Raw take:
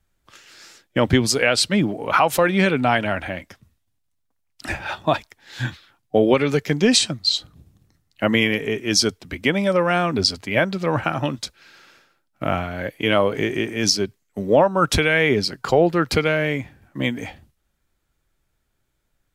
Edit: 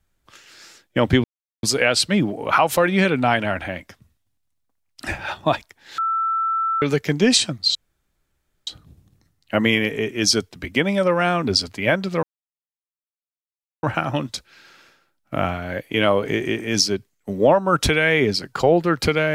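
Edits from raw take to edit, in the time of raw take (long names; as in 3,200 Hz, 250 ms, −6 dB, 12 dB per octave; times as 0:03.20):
0:01.24: splice in silence 0.39 s
0:05.59–0:06.43: beep over 1,330 Hz −18.5 dBFS
0:07.36: splice in room tone 0.92 s
0:10.92: splice in silence 1.60 s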